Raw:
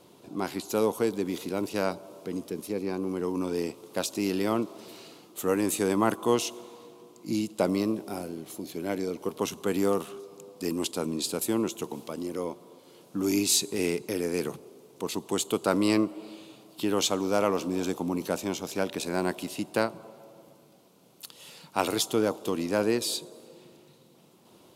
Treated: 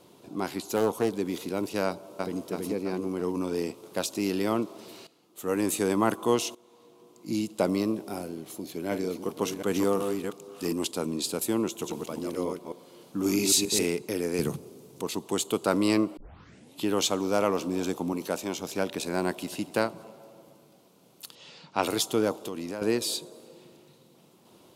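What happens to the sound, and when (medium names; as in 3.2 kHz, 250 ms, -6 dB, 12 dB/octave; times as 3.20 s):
0.76–1.16 s: loudspeaker Doppler distortion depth 0.22 ms
1.86–2.42 s: echo throw 330 ms, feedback 55%, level -1.5 dB
5.07–5.60 s: fade in quadratic, from -15 dB
6.55–7.42 s: fade in, from -18 dB
8.56–10.73 s: chunks repeated in reverse 355 ms, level -5.5 dB
11.66–13.86 s: chunks repeated in reverse 133 ms, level -3 dB
14.39–15.02 s: tone controls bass +11 dB, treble +5 dB
16.17 s: tape start 0.66 s
18.13–18.58 s: bass shelf 170 Hz -7.5 dB
19.28–19.73 s: echo throw 240 ms, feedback 40%, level -16 dB
21.35–21.83 s: low-pass 6 kHz 24 dB/octave
22.37–22.82 s: compression 5:1, threshold -31 dBFS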